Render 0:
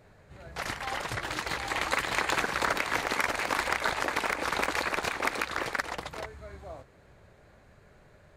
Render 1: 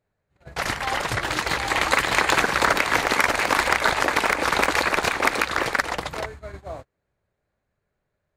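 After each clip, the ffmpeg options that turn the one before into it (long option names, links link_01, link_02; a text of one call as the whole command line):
ffmpeg -i in.wav -af "agate=range=-29dB:threshold=-44dB:ratio=16:detection=peak,volume=8.5dB" out.wav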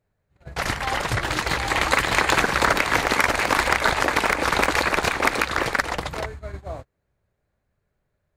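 ffmpeg -i in.wav -af "lowshelf=frequency=160:gain=6.5" out.wav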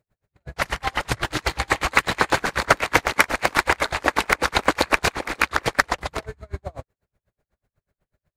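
ffmpeg -i in.wav -af "aeval=exprs='val(0)*pow(10,-34*(0.5-0.5*cos(2*PI*8.1*n/s))/20)':channel_layout=same,volume=6dB" out.wav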